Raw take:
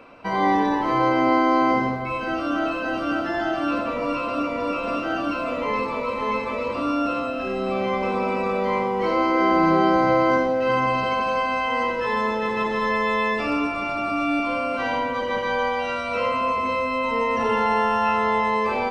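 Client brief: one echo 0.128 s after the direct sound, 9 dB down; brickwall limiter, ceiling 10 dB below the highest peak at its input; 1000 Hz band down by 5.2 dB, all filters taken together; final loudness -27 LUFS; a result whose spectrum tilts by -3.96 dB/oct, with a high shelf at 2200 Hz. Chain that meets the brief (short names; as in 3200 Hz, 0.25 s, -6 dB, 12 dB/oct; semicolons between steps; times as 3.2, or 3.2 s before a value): bell 1000 Hz -5.5 dB; high shelf 2200 Hz -4 dB; limiter -20.5 dBFS; echo 0.128 s -9 dB; gain +1.5 dB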